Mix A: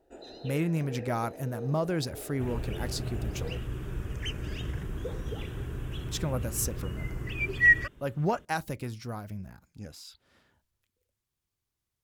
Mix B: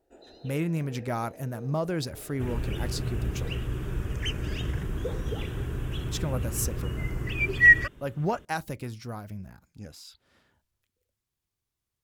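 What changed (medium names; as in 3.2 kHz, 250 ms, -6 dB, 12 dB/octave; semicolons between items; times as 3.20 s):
first sound -5.5 dB; second sound +4.0 dB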